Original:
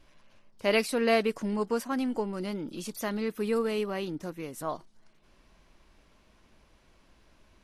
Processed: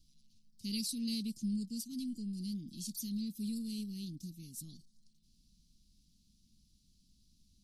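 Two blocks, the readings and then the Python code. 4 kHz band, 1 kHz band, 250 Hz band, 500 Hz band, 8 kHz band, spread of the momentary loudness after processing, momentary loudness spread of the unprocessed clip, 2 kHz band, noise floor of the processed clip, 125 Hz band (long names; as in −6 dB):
−5.0 dB, below −40 dB, −5.5 dB, −34.5 dB, −1.0 dB, 10 LU, 11 LU, below −25 dB, −70 dBFS, −3.5 dB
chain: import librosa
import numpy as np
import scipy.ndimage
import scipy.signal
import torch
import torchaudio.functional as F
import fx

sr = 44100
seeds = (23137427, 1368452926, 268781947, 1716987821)

y = scipy.signal.sosfilt(scipy.signal.ellip(3, 1.0, 50, [210.0, 4300.0], 'bandstop', fs=sr, output='sos'), x)
y = fx.low_shelf(y, sr, hz=160.0, db=-7.0)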